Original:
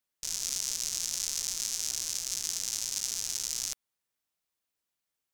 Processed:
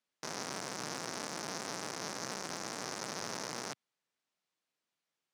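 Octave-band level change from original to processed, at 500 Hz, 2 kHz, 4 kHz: +15.5, +4.5, −8.5 decibels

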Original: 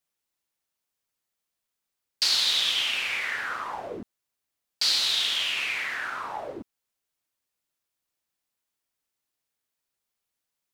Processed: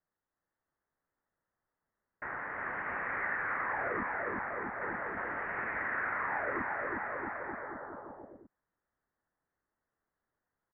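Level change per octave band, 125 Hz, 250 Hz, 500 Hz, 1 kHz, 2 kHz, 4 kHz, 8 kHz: can't be measured, +3.5 dB, +2.5 dB, +1.5 dB, −2.5 dB, below −40 dB, below −40 dB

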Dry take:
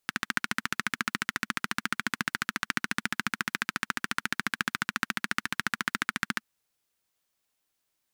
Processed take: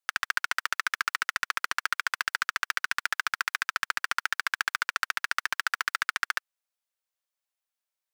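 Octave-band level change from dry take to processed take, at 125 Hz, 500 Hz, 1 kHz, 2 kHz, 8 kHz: below −15 dB, −3.0 dB, +3.0 dB, +2.5 dB, +1.0 dB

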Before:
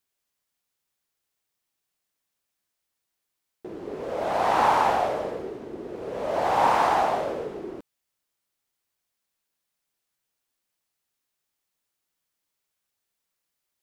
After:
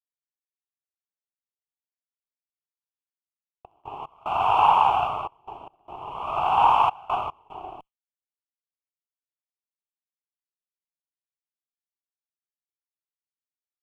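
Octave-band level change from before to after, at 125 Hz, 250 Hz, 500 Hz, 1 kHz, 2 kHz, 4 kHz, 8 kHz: −1.0 dB, −11.0 dB, −8.0 dB, +2.5 dB, −4.0 dB, +1.5 dB, below −10 dB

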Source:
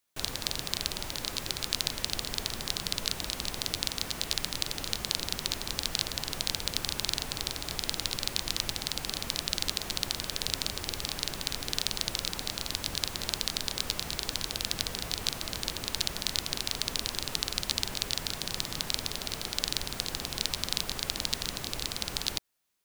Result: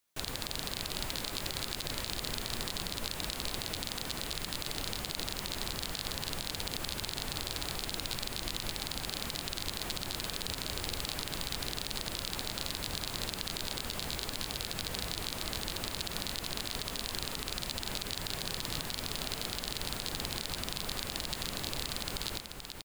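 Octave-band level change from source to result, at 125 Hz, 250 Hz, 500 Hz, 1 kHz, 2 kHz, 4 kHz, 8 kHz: −0.5, −0.5, −0.5, −1.0, −2.0, −5.0, −5.0 decibels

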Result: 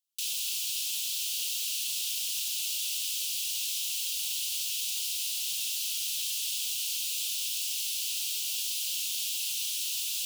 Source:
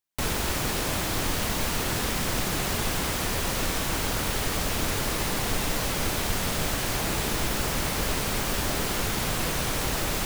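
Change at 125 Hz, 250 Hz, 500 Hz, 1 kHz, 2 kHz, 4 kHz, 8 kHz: below −40 dB, below −40 dB, below −35 dB, below −35 dB, −12.0 dB, 0.0 dB, +0.5 dB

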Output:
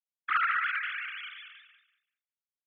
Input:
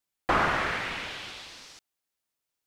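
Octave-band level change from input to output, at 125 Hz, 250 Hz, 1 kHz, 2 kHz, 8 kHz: below −35 dB, below −35 dB, −3.0 dB, 0.0 dB, below −35 dB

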